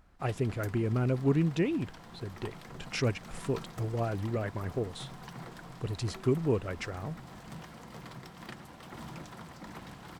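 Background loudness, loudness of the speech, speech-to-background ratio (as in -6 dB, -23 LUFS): -47.5 LUFS, -32.5 LUFS, 15.0 dB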